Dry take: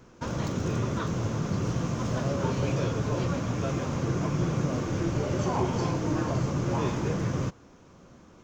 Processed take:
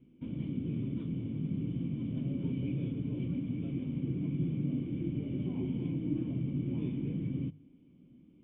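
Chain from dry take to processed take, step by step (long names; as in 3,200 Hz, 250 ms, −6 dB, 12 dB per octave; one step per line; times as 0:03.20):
formant resonators in series i
parametric band 150 Hz +8.5 dB 0.46 octaves
mains-hum notches 50/100/150 Hz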